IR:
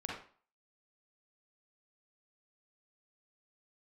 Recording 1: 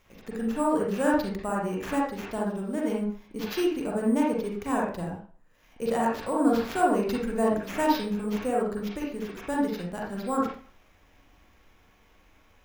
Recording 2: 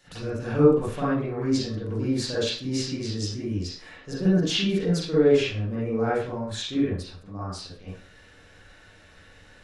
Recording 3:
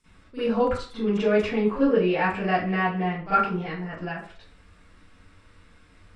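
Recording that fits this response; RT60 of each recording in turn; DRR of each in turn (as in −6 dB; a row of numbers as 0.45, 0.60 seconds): 1; 0.45, 0.45, 0.45 seconds; −3.5, −10.5, −19.5 decibels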